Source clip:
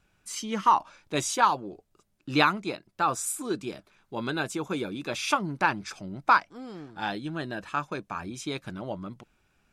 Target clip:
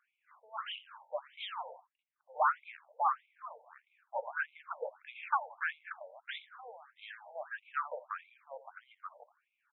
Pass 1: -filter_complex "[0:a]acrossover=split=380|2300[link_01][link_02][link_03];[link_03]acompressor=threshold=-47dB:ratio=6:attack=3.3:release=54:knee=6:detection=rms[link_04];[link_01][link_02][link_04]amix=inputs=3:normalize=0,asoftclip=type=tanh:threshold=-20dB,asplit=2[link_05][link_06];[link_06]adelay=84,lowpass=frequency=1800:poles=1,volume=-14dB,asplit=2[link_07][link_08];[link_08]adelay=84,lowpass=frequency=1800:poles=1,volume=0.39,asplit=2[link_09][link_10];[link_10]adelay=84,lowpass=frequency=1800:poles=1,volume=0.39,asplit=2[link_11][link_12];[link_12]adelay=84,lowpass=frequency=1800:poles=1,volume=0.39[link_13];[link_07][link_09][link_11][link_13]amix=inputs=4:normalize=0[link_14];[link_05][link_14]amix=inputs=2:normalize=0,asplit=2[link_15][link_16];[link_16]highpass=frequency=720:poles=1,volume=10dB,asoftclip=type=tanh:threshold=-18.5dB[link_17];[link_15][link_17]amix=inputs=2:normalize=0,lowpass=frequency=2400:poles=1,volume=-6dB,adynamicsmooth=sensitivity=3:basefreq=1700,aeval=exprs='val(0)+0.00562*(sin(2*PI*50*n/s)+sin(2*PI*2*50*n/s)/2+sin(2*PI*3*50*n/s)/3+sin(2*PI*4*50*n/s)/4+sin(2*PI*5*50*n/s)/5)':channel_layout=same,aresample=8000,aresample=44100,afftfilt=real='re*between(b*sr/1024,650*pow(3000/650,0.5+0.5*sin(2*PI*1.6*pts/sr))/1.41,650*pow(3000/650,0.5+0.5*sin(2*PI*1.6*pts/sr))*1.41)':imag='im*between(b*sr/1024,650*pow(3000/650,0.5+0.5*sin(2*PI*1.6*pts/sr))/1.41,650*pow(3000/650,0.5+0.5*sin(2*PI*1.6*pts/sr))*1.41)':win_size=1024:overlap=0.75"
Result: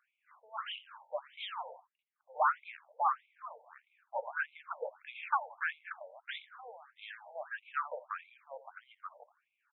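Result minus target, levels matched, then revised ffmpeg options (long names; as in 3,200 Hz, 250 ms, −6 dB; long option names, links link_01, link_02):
downward compressor: peak gain reduction −9 dB
-filter_complex "[0:a]acrossover=split=380|2300[link_01][link_02][link_03];[link_03]acompressor=threshold=-57.5dB:ratio=6:attack=3.3:release=54:knee=6:detection=rms[link_04];[link_01][link_02][link_04]amix=inputs=3:normalize=0,asoftclip=type=tanh:threshold=-20dB,asplit=2[link_05][link_06];[link_06]adelay=84,lowpass=frequency=1800:poles=1,volume=-14dB,asplit=2[link_07][link_08];[link_08]adelay=84,lowpass=frequency=1800:poles=1,volume=0.39,asplit=2[link_09][link_10];[link_10]adelay=84,lowpass=frequency=1800:poles=1,volume=0.39,asplit=2[link_11][link_12];[link_12]adelay=84,lowpass=frequency=1800:poles=1,volume=0.39[link_13];[link_07][link_09][link_11][link_13]amix=inputs=4:normalize=0[link_14];[link_05][link_14]amix=inputs=2:normalize=0,asplit=2[link_15][link_16];[link_16]highpass=frequency=720:poles=1,volume=10dB,asoftclip=type=tanh:threshold=-18.5dB[link_17];[link_15][link_17]amix=inputs=2:normalize=0,lowpass=frequency=2400:poles=1,volume=-6dB,adynamicsmooth=sensitivity=3:basefreq=1700,aeval=exprs='val(0)+0.00562*(sin(2*PI*50*n/s)+sin(2*PI*2*50*n/s)/2+sin(2*PI*3*50*n/s)/3+sin(2*PI*4*50*n/s)/4+sin(2*PI*5*50*n/s)/5)':channel_layout=same,aresample=8000,aresample=44100,afftfilt=real='re*between(b*sr/1024,650*pow(3000/650,0.5+0.5*sin(2*PI*1.6*pts/sr))/1.41,650*pow(3000/650,0.5+0.5*sin(2*PI*1.6*pts/sr))*1.41)':imag='im*between(b*sr/1024,650*pow(3000/650,0.5+0.5*sin(2*PI*1.6*pts/sr))/1.41,650*pow(3000/650,0.5+0.5*sin(2*PI*1.6*pts/sr))*1.41)':win_size=1024:overlap=0.75"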